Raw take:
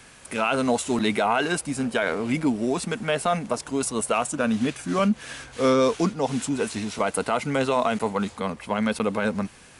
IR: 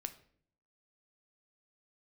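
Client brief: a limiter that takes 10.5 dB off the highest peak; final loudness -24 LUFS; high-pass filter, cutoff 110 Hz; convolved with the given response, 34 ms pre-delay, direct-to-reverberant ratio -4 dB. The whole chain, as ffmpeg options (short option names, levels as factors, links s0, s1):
-filter_complex "[0:a]highpass=110,alimiter=limit=0.112:level=0:latency=1,asplit=2[s0][s1];[1:a]atrim=start_sample=2205,adelay=34[s2];[s1][s2]afir=irnorm=-1:irlink=0,volume=2.11[s3];[s0][s3]amix=inputs=2:normalize=0,volume=0.944"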